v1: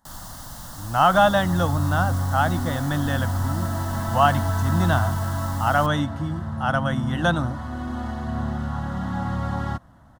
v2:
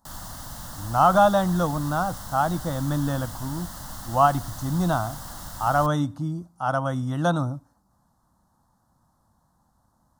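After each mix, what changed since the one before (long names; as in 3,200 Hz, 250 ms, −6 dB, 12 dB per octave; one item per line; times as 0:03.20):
speech: add flat-topped bell 2,300 Hz −11 dB 1.3 octaves
second sound: muted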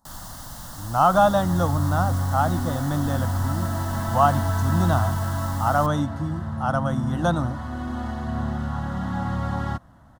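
second sound: unmuted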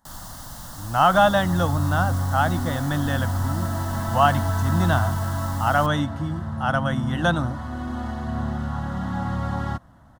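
speech: add flat-topped bell 2,300 Hz +11 dB 1.3 octaves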